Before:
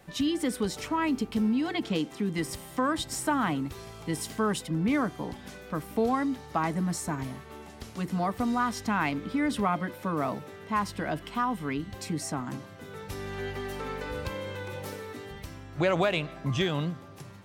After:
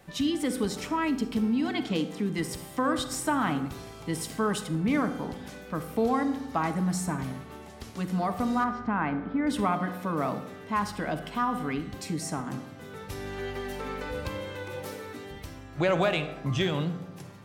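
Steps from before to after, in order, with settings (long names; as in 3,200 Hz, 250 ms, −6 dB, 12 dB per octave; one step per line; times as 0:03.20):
0:08.64–0:09.47: low-pass filter 1,600 Hz 12 dB per octave
convolution reverb RT60 0.85 s, pre-delay 41 ms, DRR 10 dB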